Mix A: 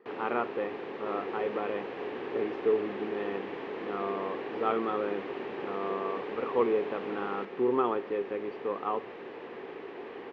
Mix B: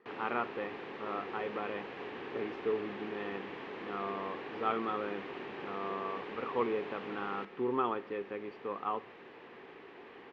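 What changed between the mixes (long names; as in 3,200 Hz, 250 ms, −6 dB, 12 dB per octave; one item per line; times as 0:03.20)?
second sound −4.5 dB
master: add parametric band 450 Hz −7 dB 1.8 octaves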